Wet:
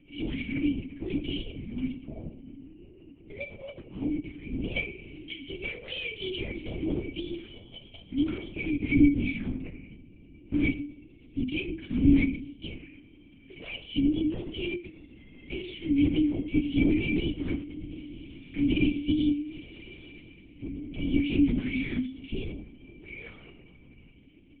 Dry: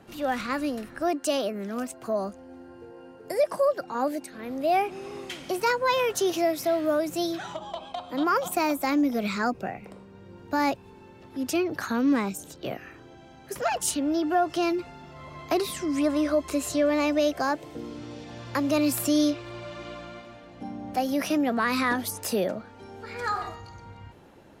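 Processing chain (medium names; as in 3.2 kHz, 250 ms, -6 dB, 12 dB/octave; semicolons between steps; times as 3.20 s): local Wiener filter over 9 samples; resonant high shelf 1.7 kHz +13 dB, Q 1.5; peak limiter -13 dBFS, peak gain reduction 11.5 dB; cascade formant filter i; simulated room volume 120 m³, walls mixed, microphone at 0.46 m; LPC vocoder at 8 kHz whisper; trim +2.5 dB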